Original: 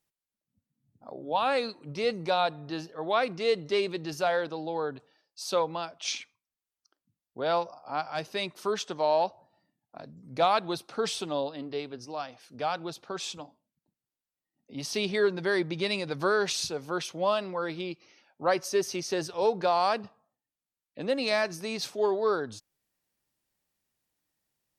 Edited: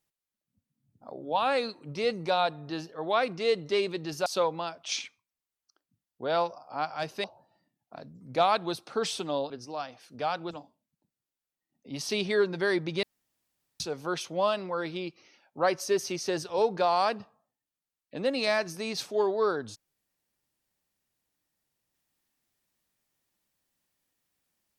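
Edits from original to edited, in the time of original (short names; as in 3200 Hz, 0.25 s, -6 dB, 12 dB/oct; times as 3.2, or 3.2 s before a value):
4.26–5.42 cut
8.4–9.26 cut
11.52–11.9 cut
12.91–13.35 cut
15.87–16.64 room tone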